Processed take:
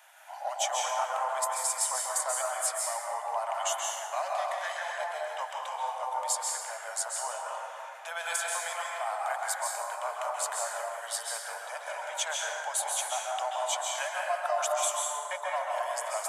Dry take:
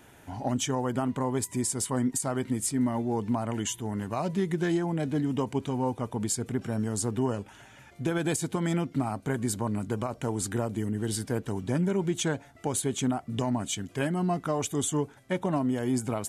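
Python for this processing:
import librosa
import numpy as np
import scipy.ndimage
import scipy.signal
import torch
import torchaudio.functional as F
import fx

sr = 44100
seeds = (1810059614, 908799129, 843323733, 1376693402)

y = scipy.signal.sosfilt(scipy.signal.butter(12, 600.0, 'highpass', fs=sr, output='sos'), x)
y = fx.rev_plate(y, sr, seeds[0], rt60_s=2.5, hf_ratio=0.4, predelay_ms=120, drr_db=-3.0)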